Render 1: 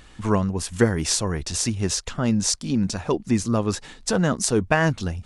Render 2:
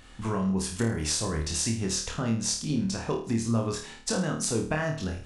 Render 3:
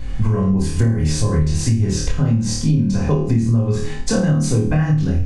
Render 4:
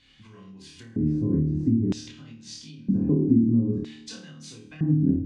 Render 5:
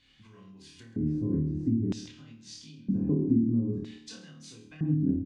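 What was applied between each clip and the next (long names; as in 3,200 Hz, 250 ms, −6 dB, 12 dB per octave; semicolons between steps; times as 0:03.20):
downward compressor, threshold −22 dBFS, peak gain reduction 10.5 dB; on a send: flutter between parallel walls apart 4.5 metres, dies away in 0.43 s; on the sum: level −4 dB
bass and treble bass +9 dB, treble −4 dB; convolution reverb RT60 0.30 s, pre-delay 3 ms, DRR −1.5 dB; downward compressor, threshold −18 dBFS, peak gain reduction 14 dB; level +4.5 dB
low shelf with overshoot 410 Hz +8.5 dB, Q 1.5; auto-filter band-pass square 0.52 Hz 290–3,400 Hz; feedback delay network reverb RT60 1.9 s, low-frequency decay 0.85×, high-frequency decay 0.4×, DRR 19 dB; level −6 dB
slap from a distant wall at 23 metres, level −17 dB; level −5 dB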